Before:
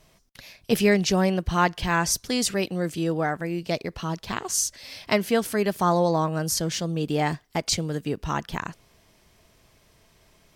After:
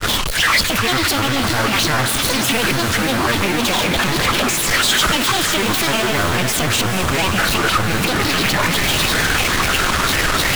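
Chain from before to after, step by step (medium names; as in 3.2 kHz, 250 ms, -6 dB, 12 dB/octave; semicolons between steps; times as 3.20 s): one-bit comparator; peaking EQ 2.2 kHz +12 dB 0.59 oct; granulator, spray 13 ms, pitch spread up and down by 12 st; on a send: echo that smears into a reverb 452 ms, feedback 66%, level -8 dB; on the sum: trim +7.5 dB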